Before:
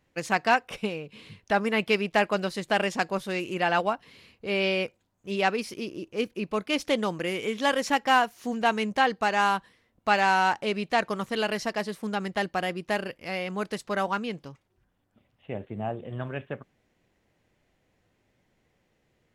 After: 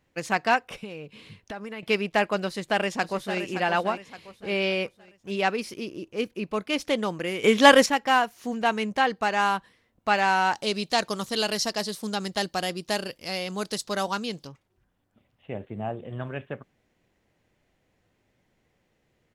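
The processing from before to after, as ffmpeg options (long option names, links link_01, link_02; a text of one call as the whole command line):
ffmpeg -i in.wav -filter_complex "[0:a]asettb=1/sr,asplit=3[link_01][link_02][link_03];[link_01]atrim=end=0.644[link_04];[link_02]atrim=start=0.64:end=1.83,asetpts=PTS-STARTPTS,afade=type=in:duration=0.004:curve=qsin,afade=type=out:start_time=1.186:duration=0.004:curve=qsin,acompressor=threshold=-33dB:ratio=6:attack=3.2:release=140:knee=1:detection=peak[link_05];[link_03]atrim=start=1.826[link_06];[link_04][link_05]acrossfade=duration=0.004:curve1=hsin:curve2=qsin[link_07];[link_07][link_06]acrossfade=duration=0.004:curve1=qsin:curve2=hsin,asplit=2[link_08][link_09];[link_09]afade=type=in:start_time=2.46:duration=0.01,afade=type=out:start_time=3.4:duration=0.01,aecho=0:1:570|1140|1710|2280:0.334965|0.133986|0.0535945|0.0214378[link_10];[link_08][link_10]amix=inputs=2:normalize=0,asettb=1/sr,asplit=3[link_11][link_12][link_13];[link_11]atrim=end=10.534[link_14];[link_12]atrim=start=10.53:end=14.47,asetpts=PTS-STARTPTS,afade=type=in:duration=0.004:curve=qsin,afade=type=out:start_time=3.936:duration=0.004:curve=qsin,highshelf=frequency=3100:width_type=q:width=1.5:gain=9.5[link_15];[link_13]atrim=start=14.466[link_16];[link_14][link_15]acrossfade=duration=0.004:curve1=hsin:curve2=qsin[link_17];[link_17][link_16]acrossfade=duration=0.004:curve1=qsin:curve2=hsin,asplit=3[link_18][link_19][link_20];[link_18]atrim=end=7.442[link_21];[link_19]atrim=start=7.438:end=7.862,asetpts=PTS-STARTPTS,volume=10.5dB[link_22];[link_20]atrim=start=7.858[link_23];[link_21][link_22]acrossfade=duration=0.004:curve1=hsin:curve2=hsin[link_24];[link_24][link_23]acrossfade=duration=0.004:curve1=hsin:curve2=hsin" out.wav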